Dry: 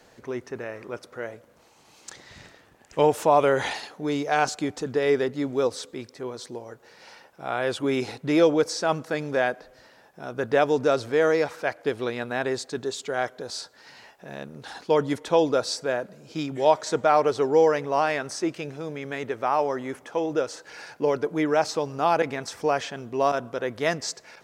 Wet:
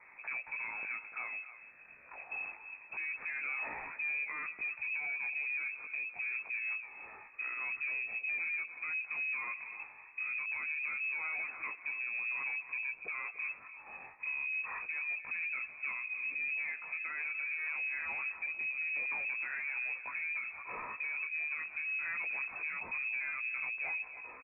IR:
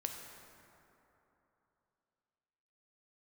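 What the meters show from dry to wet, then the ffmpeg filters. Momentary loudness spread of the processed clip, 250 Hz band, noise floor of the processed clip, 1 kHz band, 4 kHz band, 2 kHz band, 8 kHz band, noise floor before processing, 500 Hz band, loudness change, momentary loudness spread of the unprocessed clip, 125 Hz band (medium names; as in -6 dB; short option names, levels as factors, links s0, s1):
7 LU, under -35 dB, -55 dBFS, -22.0 dB, under -40 dB, -0.5 dB, under -40 dB, -56 dBFS, -37.5 dB, -11.0 dB, 17 LU, under -30 dB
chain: -filter_complex "[0:a]asubboost=boost=10.5:cutoff=190,agate=range=0.501:threshold=0.00562:ratio=16:detection=peak,flanger=delay=16.5:depth=3.7:speed=0.25,acompressor=threshold=0.0224:ratio=6,alimiter=level_in=3.55:limit=0.0631:level=0:latency=1:release=294,volume=0.282,highpass=f=88:w=0.5412,highpass=f=88:w=1.3066,asplit=2[s0][s1];[s1]adelay=291.5,volume=0.178,highshelf=f=4000:g=-6.56[s2];[s0][s2]amix=inputs=2:normalize=0,aresample=11025,asoftclip=type=tanh:threshold=0.0106,aresample=44100,lowpass=f=2300:t=q:w=0.5098,lowpass=f=2300:t=q:w=0.6013,lowpass=f=2300:t=q:w=0.9,lowpass=f=2300:t=q:w=2.563,afreqshift=-2700,volume=2.37"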